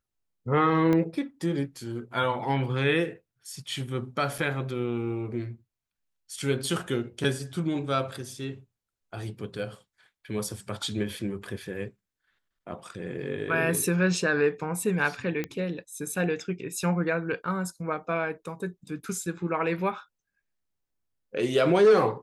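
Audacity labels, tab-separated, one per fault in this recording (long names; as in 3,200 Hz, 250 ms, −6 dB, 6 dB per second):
0.930000	0.930000	click −15 dBFS
4.380000	4.380000	drop-out 4.5 ms
15.440000	15.440000	click −17 dBFS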